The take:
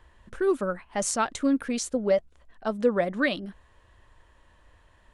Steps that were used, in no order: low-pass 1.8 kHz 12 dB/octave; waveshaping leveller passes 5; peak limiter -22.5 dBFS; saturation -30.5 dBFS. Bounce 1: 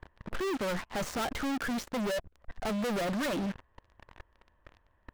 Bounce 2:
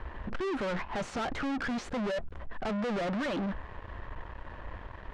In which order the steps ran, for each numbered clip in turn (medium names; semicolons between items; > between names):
low-pass > waveshaping leveller > saturation > peak limiter; peak limiter > waveshaping leveller > low-pass > saturation